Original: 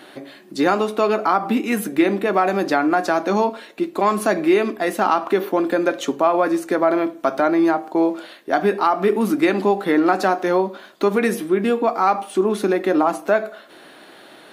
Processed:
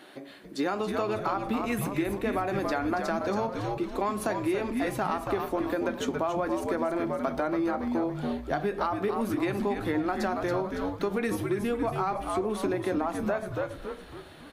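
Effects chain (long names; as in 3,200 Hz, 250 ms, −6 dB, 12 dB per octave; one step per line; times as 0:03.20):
on a send: echo with shifted repeats 279 ms, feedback 45%, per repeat −91 Hz, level −6.5 dB
on the sum: downward compressor, threshold −17 dBFS, peak gain reduction 7.5 dB
level −7.5 dB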